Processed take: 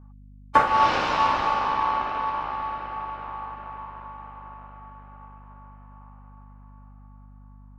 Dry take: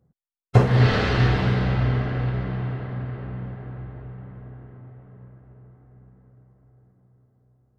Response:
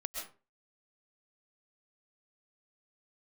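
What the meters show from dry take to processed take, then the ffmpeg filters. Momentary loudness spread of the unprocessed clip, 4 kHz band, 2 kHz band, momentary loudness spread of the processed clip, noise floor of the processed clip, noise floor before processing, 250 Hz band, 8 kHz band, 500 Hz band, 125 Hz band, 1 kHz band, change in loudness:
20 LU, -0.5 dB, 0.0 dB, 21 LU, -47 dBFS, -76 dBFS, -11.5 dB, n/a, -5.0 dB, -23.0 dB, +11.0 dB, -1.5 dB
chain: -af "aeval=exprs='val(0)*sin(2*PI*1000*n/s)':c=same,aeval=exprs='val(0)+0.00501*(sin(2*PI*50*n/s)+sin(2*PI*2*50*n/s)/2+sin(2*PI*3*50*n/s)/3+sin(2*PI*4*50*n/s)/4+sin(2*PI*5*50*n/s)/5)':c=same"

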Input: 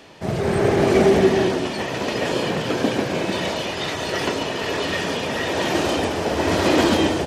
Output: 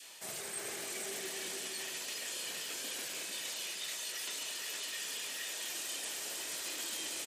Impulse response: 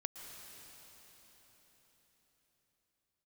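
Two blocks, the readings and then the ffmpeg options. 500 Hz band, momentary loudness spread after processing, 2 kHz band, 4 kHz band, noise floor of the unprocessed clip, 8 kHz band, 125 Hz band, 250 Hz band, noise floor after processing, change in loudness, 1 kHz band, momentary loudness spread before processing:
-30.0 dB, 1 LU, -17.0 dB, -11.5 dB, -28 dBFS, -2.5 dB, -38.5 dB, -33.5 dB, -43 dBFS, -17.0 dB, -26.5 dB, 8 LU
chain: -filter_complex "[0:a]aderivative,acontrast=85,asplit=2[a][b];[b]aecho=0:1:462:0.473[c];[a][c]amix=inputs=2:normalize=0,aexciter=amount=1.1:drive=9.3:freq=7.3k,aresample=32000,aresample=44100,highpass=71,areverse,acompressor=threshold=-35dB:ratio=6,areverse,adynamicequalizer=threshold=0.00158:dfrequency=840:dqfactor=1.2:tfrequency=840:tqfactor=1.2:attack=5:release=100:ratio=0.375:range=2.5:mode=cutabove:tftype=bell,volume=-3dB"

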